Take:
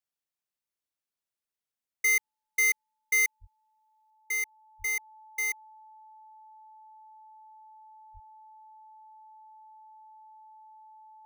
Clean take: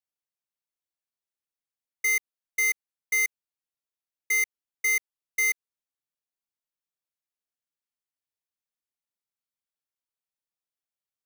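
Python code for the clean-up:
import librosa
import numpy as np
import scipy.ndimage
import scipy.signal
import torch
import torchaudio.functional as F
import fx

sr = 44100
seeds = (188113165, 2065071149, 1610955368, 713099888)

y = fx.notch(x, sr, hz=870.0, q=30.0)
y = fx.fix_deplosive(y, sr, at_s=(3.4, 4.78, 8.13))
y = fx.gain(y, sr, db=fx.steps((0.0, 0.0), (4.1, 6.0)))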